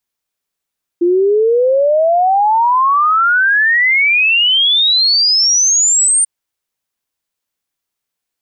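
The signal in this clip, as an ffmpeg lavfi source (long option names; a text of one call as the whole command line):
ffmpeg -f lavfi -i "aevalsrc='0.376*clip(min(t,5.24-t)/0.01,0,1)*sin(2*PI*340*5.24/log(9000/340)*(exp(log(9000/340)*t/5.24)-1))':duration=5.24:sample_rate=44100" out.wav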